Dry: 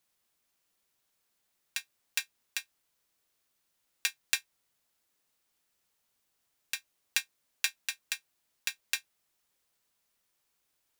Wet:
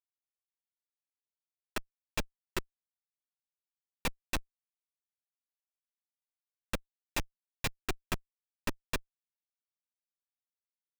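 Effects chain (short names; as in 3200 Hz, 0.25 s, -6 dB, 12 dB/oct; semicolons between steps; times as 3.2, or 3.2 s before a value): flange 0.29 Hz, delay 6 ms, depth 3.3 ms, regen -1%; Schmitt trigger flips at -30 dBFS; gain +16 dB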